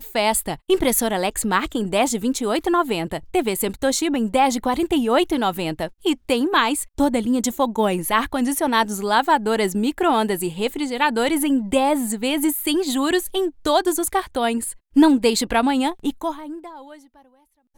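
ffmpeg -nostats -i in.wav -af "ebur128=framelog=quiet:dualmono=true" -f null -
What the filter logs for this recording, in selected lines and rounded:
Integrated loudness:
  I:         -17.6 LUFS
  Threshold: -27.9 LUFS
Loudness range:
  LRA:         1.4 LU
  Threshold: -37.7 LUFS
  LRA low:   -18.3 LUFS
  LRA high:  -16.9 LUFS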